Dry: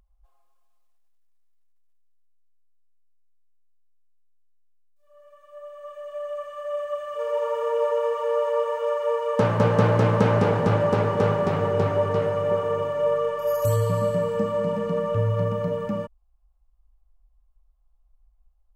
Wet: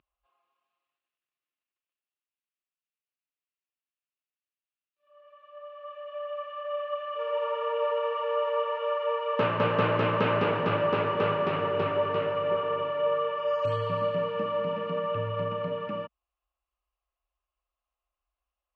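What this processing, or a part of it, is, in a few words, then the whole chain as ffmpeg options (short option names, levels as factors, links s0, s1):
kitchen radio: -af "highpass=190,equalizer=f=210:t=q:w=4:g=-8,equalizer=f=480:t=q:w=4:g=-5,equalizer=f=790:t=q:w=4:g=-7,equalizer=f=1200:t=q:w=4:g=3,equalizer=f=2700:t=q:w=4:g=9,lowpass=f=3700:w=0.5412,lowpass=f=3700:w=1.3066,volume=0.841"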